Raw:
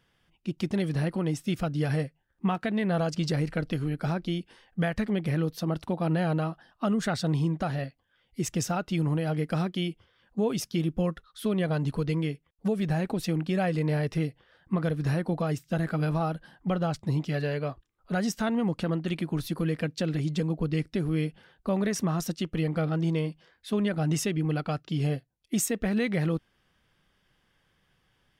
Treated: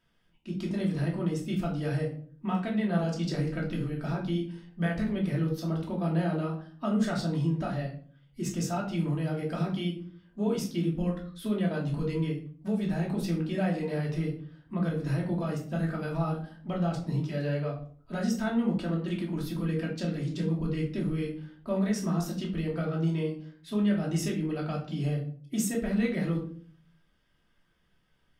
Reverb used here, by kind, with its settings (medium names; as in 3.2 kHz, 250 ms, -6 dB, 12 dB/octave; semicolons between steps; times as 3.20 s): simulated room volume 440 m³, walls furnished, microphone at 2.8 m; trim -8 dB